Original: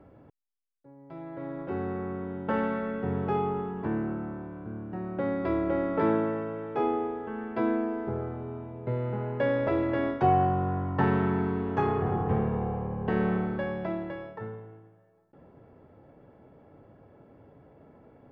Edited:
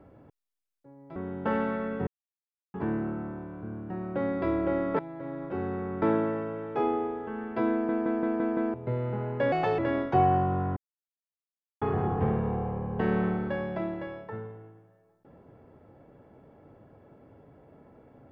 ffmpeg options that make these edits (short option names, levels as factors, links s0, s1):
-filter_complex "[0:a]asplit=16[s0][s1][s2][s3][s4][s5][s6][s7][s8][s9][s10][s11][s12][s13][s14][s15];[s0]atrim=end=1.162[s16];[s1]atrim=start=2.188:end=3.1,asetpts=PTS-STARTPTS,afade=t=out:st=0.908:d=0.004:c=hsin[s17];[s2]atrim=start=3.1:end=3.77,asetpts=PTS-STARTPTS,volume=0[s18];[s3]atrim=start=3.77:end=6.022,asetpts=PTS-STARTPTS,afade=t=in:d=0.004:c=hsin[s19];[s4]atrim=start=1.158:end=2.192[s20];[s5]atrim=start=6.018:end=7.892[s21];[s6]atrim=start=7.718:end=7.892[s22];[s7]atrim=start=7.718:end=7.892[s23];[s8]atrim=start=7.718:end=7.892[s24];[s9]atrim=start=7.718:end=7.892[s25];[s10]atrim=start=7.718:end=7.892[s26];[s11]atrim=start=8.738:end=9.524[s27];[s12]atrim=start=9.52:end=9.87,asetpts=PTS-STARTPTS,asetrate=58212,aresample=44100,atrim=end_sample=11693,asetpts=PTS-STARTPTS[s28];[s13]atrim=start=9.866:end=10.85,asetpts=PTS-STARTPTS,afade=t=out:st=0.98:d=0.004:c=hsin[s29];[s14]atrim=start=10.85:end=11.9,asetpts=PTS-STARTPTS,volume=0[s30];[s15]atrim=start=11.9,asetpts=PTS-STARTPTS,afade=t=in:d=0.004:c=hsin[s31];[s17][s18][s19]concat=n=3:v=0:a=1[s32];[s16][s32]acrossfade=d=0.004:c1=hsin:c2=hsin[s33];[s33][s20]acrossfade=d=0.004:c1=hsin:c2=hsin[s34];[s34][s21]acrossfade=d=0.004:c1=hsin:c2=hsin[s35];[s35][s22]acrossfade=d=0.004:c1=hsin:c2=hsin[s36];[s36][s23]acrossfade=d=0.004:c1=hsin:c2=hsin[s37];[s37][s24]acrossfade=d=0.004:c1=hsin:c2=hsin[s38];[s38][s25]acrossfade=d=0.004:c1=hsin:c2=hsin[s39];[s39][s26]acrossfade=d=0.004:c1=hsin:c2=hsin[s40];[s40][s27]acrossfade=d=0.004:c1=hsin:c2=hsin[s41];[s41][s28]acrossfade=d=0.004:c1=hsin:c2=hsin[s42];[s29][s30][s31]concat=n=3:v=0:a=1[s43];[s42][s43]acrossfade=d=0.004:c1=hsin:c2=hsin"